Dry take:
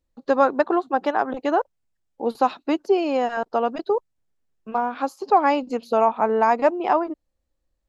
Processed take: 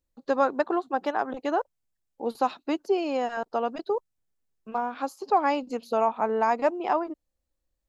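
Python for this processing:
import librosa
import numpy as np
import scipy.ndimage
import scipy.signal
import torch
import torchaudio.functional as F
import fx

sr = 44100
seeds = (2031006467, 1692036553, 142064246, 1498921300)

y = fx.high_shelf(x, sr, hz=5500.0, db=6.5)
y = y * 10.0 ** (-5.5 / 20.0)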